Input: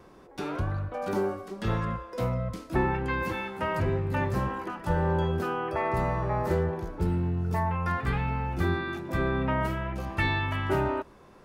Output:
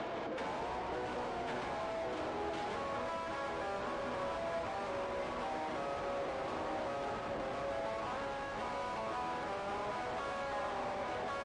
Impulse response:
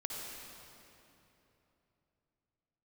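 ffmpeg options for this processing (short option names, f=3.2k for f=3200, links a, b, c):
-filter_complex "[0:a]aecho=1:1:1102|2204|3306|4408:0.447|0.161|0.0579|0.0208,asoftclip=type=tanh:threshold=-26dB,acrossover=split=440 7700:gain=0.141 1 0.0794[a][b][c];[a][b][c]amix=inputs=3:normalize=0,asetrate=27781,aresample=44100,atempo=1.5874,acrossover=split=190|490|1300[d][e][f][g];[d]acompressor=threshold=-52dB:ratio=4[h];[e]acompressor=threshold=-51dB:ratio=4[i];[f]acompressor=threshold=-38dB:ratio=4[j];[g]acompressor=threshold=-51dB:ratio=4[k];[h][i][j][k]amix=inputs=4:normalize=0,alimiter=level_in=13dB:limit=-24dB:level=0:latency=1:release=284,volume=-13dB,asplit=2[l][m];[m]highpass=f=720:p=1,volume=32dB,asoftclip=type=tanh:threshold=-37dB[n];[l][n]amix=inputs=2:normalize=0,lowpass=f=2.1k:p=1,volume=-6dB,acompressor=threshold=-50dB:ratio=3,highpass=f=91:p=1,asplit=2[o][p];[p]lowshelf=f=150:g=12[q];[1:a]atrim=start_sample=2205[r];[q][r]afir=irnorm=-1:irlink=0,volume=-1dB[s];[o][s]amix=inputs=2:normalize=0,volume=5dB" -ar 22050 -c:a libmp3lame -b:a 40k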